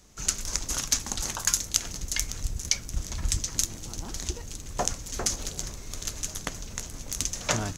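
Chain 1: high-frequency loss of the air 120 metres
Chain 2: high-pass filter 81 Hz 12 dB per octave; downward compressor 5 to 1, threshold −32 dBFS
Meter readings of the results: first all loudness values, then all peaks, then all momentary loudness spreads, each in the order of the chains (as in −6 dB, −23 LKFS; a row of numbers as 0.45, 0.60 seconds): −35.5, −36.5 LKFS; −8.5, −12.0 dBFS; 8, 5 LU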